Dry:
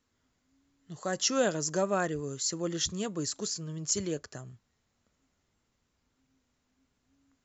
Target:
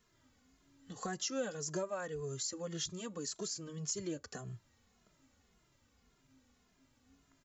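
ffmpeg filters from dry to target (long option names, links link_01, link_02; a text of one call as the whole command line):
ffmpeg -i in.wav -filter_complex "[0:a]acompressor=threshold=-44dB:ratio=4,asplit=2[link_01][link_02];[link_02]adelay=2.4,afreqshift=-1.8[link_03];[link_01][link_03]amix=inputs=2:normalize=1,volume=8dB" out.wav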